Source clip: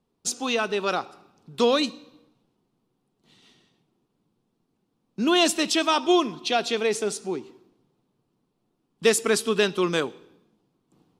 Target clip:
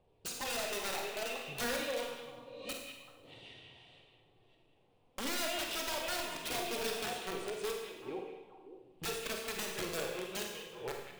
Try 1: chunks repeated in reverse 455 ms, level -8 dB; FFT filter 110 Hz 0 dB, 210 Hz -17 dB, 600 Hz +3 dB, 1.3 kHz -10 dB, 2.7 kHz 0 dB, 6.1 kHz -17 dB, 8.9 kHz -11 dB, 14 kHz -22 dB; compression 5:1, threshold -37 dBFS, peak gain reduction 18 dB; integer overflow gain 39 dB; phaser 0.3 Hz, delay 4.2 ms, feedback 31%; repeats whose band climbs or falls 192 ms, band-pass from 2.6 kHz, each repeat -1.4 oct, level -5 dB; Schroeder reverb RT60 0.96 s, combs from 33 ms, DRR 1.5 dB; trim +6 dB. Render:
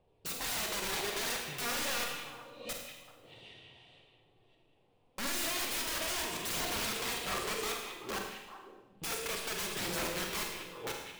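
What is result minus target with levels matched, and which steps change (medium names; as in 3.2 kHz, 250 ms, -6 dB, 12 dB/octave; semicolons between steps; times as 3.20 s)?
compression: peak gain reduction -7 dB
change: compression 5:1, threshold -45.5 dBFS, peak gain reduction 25 dB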